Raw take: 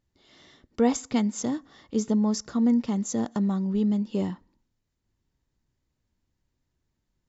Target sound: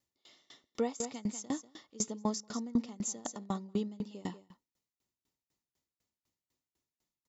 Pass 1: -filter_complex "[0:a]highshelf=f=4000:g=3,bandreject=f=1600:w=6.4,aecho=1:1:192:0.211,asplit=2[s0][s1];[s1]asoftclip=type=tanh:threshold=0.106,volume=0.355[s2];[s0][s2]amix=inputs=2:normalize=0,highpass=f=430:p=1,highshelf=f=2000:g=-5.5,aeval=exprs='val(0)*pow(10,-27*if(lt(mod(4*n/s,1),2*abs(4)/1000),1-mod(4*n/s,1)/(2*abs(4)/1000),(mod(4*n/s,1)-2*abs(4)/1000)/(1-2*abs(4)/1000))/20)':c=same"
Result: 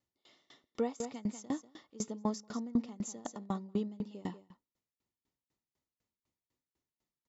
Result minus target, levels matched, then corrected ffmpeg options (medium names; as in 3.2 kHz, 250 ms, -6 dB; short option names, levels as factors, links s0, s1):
8 kHz band -6.0 dB; saturation: distortion +9 dB
-filter_complex "[0:a]highshelf=f=4000:g=13,bandreject=f=1600:w=6.4,aecho=1:1:192:0.211,asplit=2[s0][s1];[s1]asoftclip=type=tanh:threshold=0.237,volume=0.355[s2];[s0][s2]amix=inputs=2:normalize=0,highpass=f=430:p=1,highshelf=f=2000:g=-5.5,aeval=exprs='val(0)*pow(10,-27*if(lt(mod(4*n/s,1),2*abs(4)/1000),1-mod(4*n/s,1)/(2*abs(4)/1000),(mod(4*n/s,1)-2*abs(4)/1000)/(1-2*abs(4)/1000))/20)':c=same"